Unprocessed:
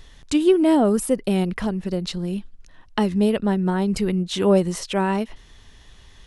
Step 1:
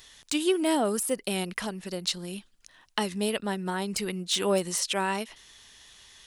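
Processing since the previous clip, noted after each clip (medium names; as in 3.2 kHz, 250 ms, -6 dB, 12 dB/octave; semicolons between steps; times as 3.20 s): de-esser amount 55%; tilt EQ +3.5 dB/octave; trim -4 dB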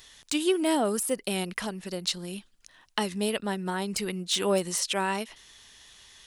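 no audible change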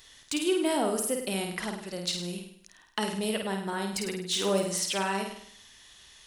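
saturation -10.5 dBFS, distortion -32 dB; on a send: flutter echo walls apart 8.8 m, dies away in 0.63 s; on the sum: trim -2.5 dB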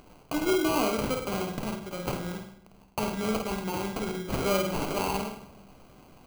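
sample-rate reducer 1.8 kHz, jitter 0%; on a send at -10 dB: reverberation RT60 0.75 s, pre-delay 7 ms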